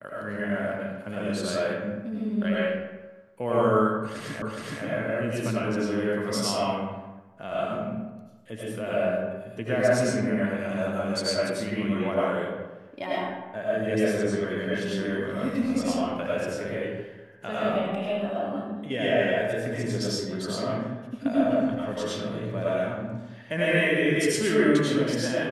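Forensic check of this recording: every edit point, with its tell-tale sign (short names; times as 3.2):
4.42 repeat of the last 0.42 s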